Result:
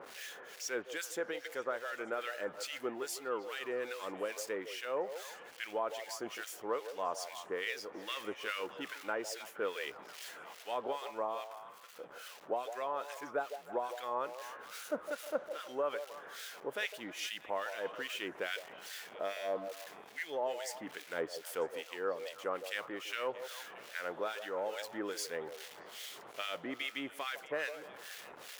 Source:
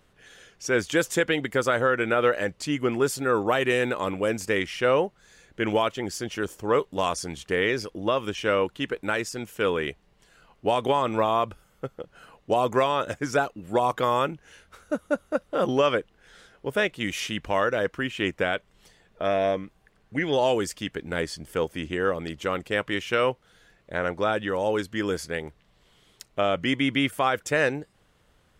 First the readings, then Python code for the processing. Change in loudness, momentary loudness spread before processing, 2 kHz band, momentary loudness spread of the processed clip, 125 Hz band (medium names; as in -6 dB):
-14.0 dB, 9 LU, -12.5 dB, 8 LU, under -25 dB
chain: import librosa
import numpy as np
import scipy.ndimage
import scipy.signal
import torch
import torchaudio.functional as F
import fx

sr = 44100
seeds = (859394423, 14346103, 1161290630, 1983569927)

y = x + 0.5 * 10.0 ** (-33.0 / 20.0) * np.sign(x)
y = scipy.signal.sosfilt(scipy.signal.butter(2, 430.0, 'highpass', fs=sr, output='sos'), y)
y = fx.peak_eq(y, sr, hz=8500.0, db=-2.5, octaves=0.35)
y = fx.harmonic_tremolo(y, sr, hz=2.4, depth_pct=100, crossover_hz=1500.0)
y = fx.rider(y, sr, range_db=4, speed_s=0.5)
y = fx.echo_stepped(y, sr, ms=157, hz=590.0, octaves=0.7, feedback_pct=70, wet_db=-8)
y = F.gain(torch.from_numpy(y), -8.5).numpy()